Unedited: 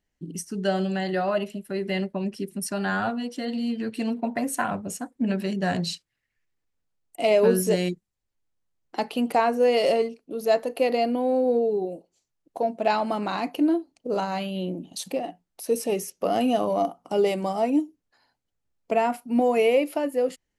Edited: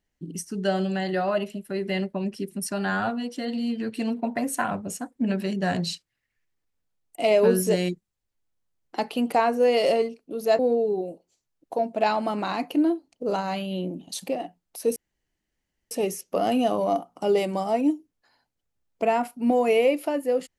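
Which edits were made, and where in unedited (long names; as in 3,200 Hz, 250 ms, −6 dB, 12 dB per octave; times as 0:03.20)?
0:10.59–0:11.43: remove
0:15.80: splice in room tone 0.95 s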